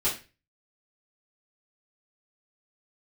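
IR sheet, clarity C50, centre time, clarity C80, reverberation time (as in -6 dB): 8.5 dB, 26 ms, 14.5 dB, 0.30 s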